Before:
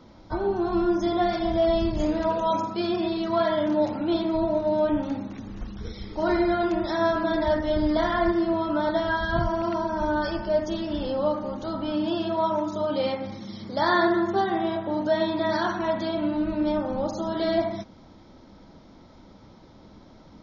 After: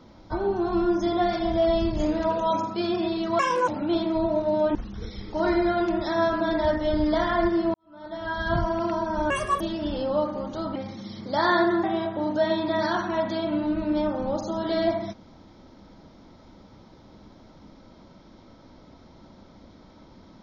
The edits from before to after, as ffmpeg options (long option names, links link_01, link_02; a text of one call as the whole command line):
ffmpeg -i in.wav -filter_complex "[0:a]asplit=9[link_01][link_02][link_03][link_04][link_05][link_06][link_07][link_08][link_09];[link_01]atrim=end=3.394[link_10];[link_02]atrim=start=3.39:end=3.87,asetpts=PTS-STARTPTS,asetrate=72765,aresample=44100,atrim=end_sample=12829,asetpts=PTS-STARTPTS[link_11];[link_03]atrim=start=3.866:end=4.942[link_12];[link_04]atrim=start=5.578:end=8.57,asetpts=PTS-STARTPTS,afade=type=out:start_time=2.988:duration=0.004:curve=hsin[link_13];[link_05]atrim=start=8.57:end=10.134,asetpts=PTS-STARTPTS,afade=type=in:duration=0.74:curve=qua[link_14];[link_06]atrim=start=10.13:end=10.69,asetpts=PTS-STARTPTS,asetrate=81144,aresample=44100[link_15];[link_07]atrim=start=10.686:end=11.842[link_16];[link_08]atrim=start=13.188:end=14.272[link_17];[link_09]atrim=start=14.538[link_18];[link_10][link_11]acrossfade=duration=0.004:curve1=hsin:curve2=hsin[link_19];[link_19][link_12]acrossfade=duration=0.004:curve1=hsin:curve2=hsin[link_20];[link_13][link_14]concat=n=2:v=0:a=1[link_21];[link_20][link_21]acrossfade=duration=0.004:curve1=hsin:curve2=hsin[link_22];[link_22][link_15]acrossfade=duration=0.004:curve1=hsin:curve2=hsin[link_23];[link_23][link_16]acrossfade=duration=0.004:curve1=hsin:curve2=hsin[link_24];[link_24][link_17]acrossfade=duration=0.004:curve1=hsin:curve2=hsin[link_25];[link_25][link_18]acrossfade=duration=0.004:curve1=hsin:curve2=hsin" out.wav